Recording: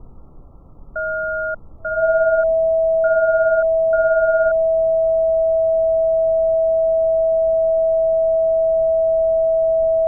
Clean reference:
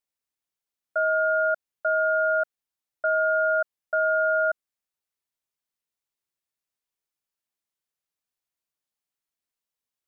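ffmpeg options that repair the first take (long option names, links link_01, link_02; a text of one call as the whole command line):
ffmpeg -i in.wav -af "bandreject=frequency=650:width=30,afftdn=noise_reduction=30:noise_floor=-37" out.wav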